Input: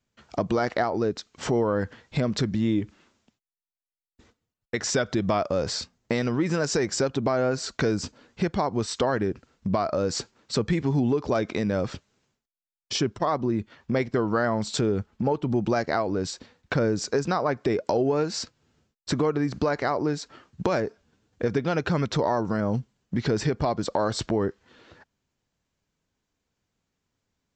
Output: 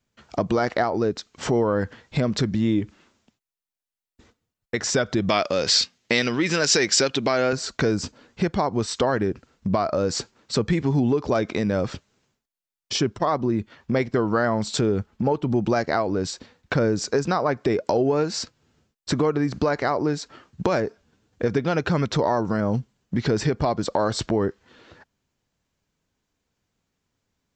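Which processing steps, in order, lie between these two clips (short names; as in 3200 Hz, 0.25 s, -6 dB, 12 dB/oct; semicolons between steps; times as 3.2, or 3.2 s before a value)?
5.29–7.53 weighting filter D; gain +2.5 dB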